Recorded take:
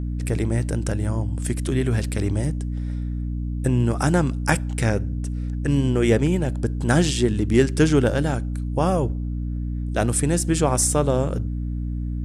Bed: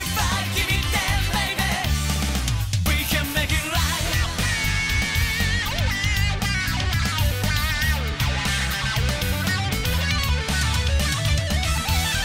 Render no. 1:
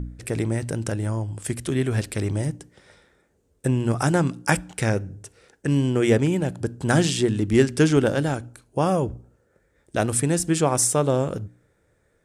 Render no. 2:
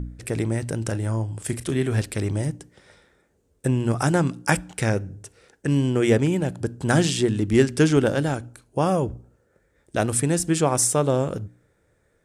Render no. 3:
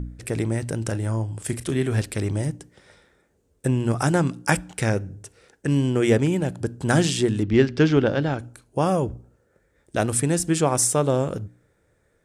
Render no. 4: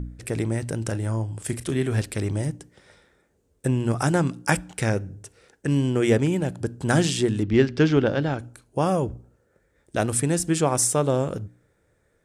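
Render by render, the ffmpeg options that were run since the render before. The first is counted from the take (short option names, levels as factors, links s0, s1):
-af "bandreject=f=60:t=h:w=4,bandreject=f=120:t=h:w=4,bandreject=f=180:t=h:w=4,bandreject=f=240:t=h:w=4,bandreject=f=300:t=h:w=4"
-filter_complex "[0:a]asettb=1/sr,asplit=3[s0][s1][s2];[s0]atrim=end=0.784[s3];[s1]atrim=start=0.78:end=2.02,asetpts=PTS-STARTPTS,afade=t=in:d=0.004:c=qsin,afade=t=out:st=1.236:d=0.004:c=qsin,asplit=2[s4][s5];[s5]adelay=36,volume=0.237[s6];[s4][s6]amix=inputs=2:normalize=0,atrim=end_sample=54684[s7];[s2]atrim=start=2.016[s8];[s3][s7]acrossfade=d=0.004:c1=hsin:c2=qsin[s9];[s9][s8]acrossfade=d=0.004:c1=qsin:c2=hsin"
-filter_complex "[0:a]asettb=1/sr,asplit=3[s0][s1][s2];[s0]atrim=end=7.434[s3];[s1]atrim=start=7.43:end=8.39,asetpts=PTS-STARTPTS,afade=t=in:d=0.004:c=qsin,afade=t=out:st=0.956:d=0.004:c=qsin,lowpass=f=4900:w=0.5412,lowpass=f=4900:w=1.3066[s4];[s2]atrim=start=8.386[s5];[s3][s4]acrossfade=d=0.004:c1=hsin:c2=qsin[s6];[s6][s5]acrossfade=d=0.004:c1=qsin:c2=hsin"
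-af "volume=0.891"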